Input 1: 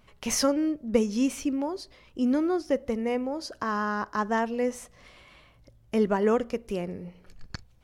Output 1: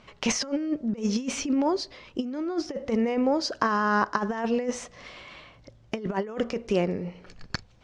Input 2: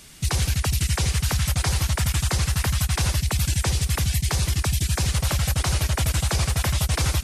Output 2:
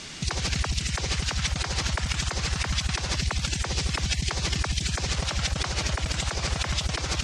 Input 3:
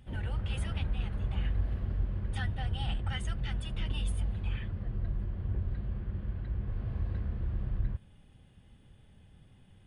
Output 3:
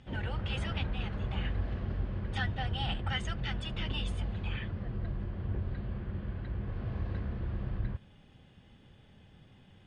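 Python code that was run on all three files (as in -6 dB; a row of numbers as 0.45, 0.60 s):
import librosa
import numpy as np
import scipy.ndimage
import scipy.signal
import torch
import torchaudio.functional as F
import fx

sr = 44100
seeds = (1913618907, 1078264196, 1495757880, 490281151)

y = fx.low_shelf(x, sr, hz=100.0, db=-11.0)
y = fx.over_compress(y, sr, threshold_db=-30.0, ratio=-0.5)
y = scipy.signal.sosfilt(scipy.signal.butter(4, 6700.0, 'lowpass', fs=sr, output='sos'), y)
y = y * librosa.db_to_amplitude(5.0)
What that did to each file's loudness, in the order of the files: 0.0, -4.0, -0.5 LU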